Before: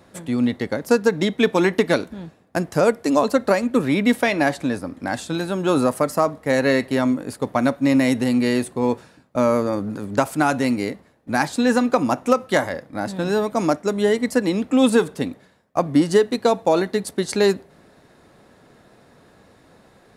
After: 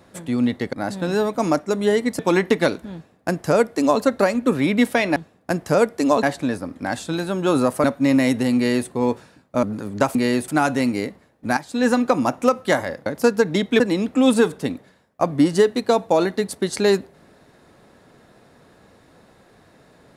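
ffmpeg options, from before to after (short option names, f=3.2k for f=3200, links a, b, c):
-filter_complex "[0:a]asplit=12[a][b][c][d][e][f][g][h][i][j][k][l];[a]atrim=end=0.732[m];[b]atrim=start=12.898:end=14.362[n];[c]atrim=start=1.468:end=4.442[o];[d]atrim=start=2.218:end=3.292[p];[e]atrim=start=4.438:end=6.052[q];[f]atrim=start=7.648:end=9.442[r];[g]atrim=start=9.798:end=10.322[s];[h]atrim=start=8.368:end=8.702[t];[i]atrim=start=10.318:end=11.41,asetpts=PTS-STARTPTS,afade=t=out:st=1.088:d=0.004:c=hsin:silence=0.237137[u];[j]atrim=start=11.41:end=12.902,asetpts=PTS-STARTPTS,afade=t=in:d=0.28:c=qua:silence=0.237137[v];[k]atrim=start=0.728:end=1.472[w];[l]atrim=start=14.358[x];[m][n]acrossfade=d=0.004:c1=hsin:c2=hsin[y];[y][o]acrossfade=d=0.004:c1=hsin:c2=hsin[z];[z][p]acrossfade=d=0.004:c1=hsin:c2=hsin[aa];[aa][q]acrossfade=d=0.004:c1=hsin:c2=hsin[ab];[ab][r]acrossfade=d=0.004:c1=hsin:c2=hsin[ac];[ac][s]acrossfade=d=0.004:c1=hsin:c2=hsin[ad];[ad][t]acrossfade=d=0.004:c1=hsin:c2=hsin[ae];[u][v]concat=n=2:v=0:a=1[af];[ae][af]acrossfade=d=0.004:c1=hsin:c2=hsin[ag];[ag][w]acrossfade=d=0.004:c1=hsin:c2=hsin[ah];[ah][x]acrossfade=d=0.004:c1=hsin:c2=hsin"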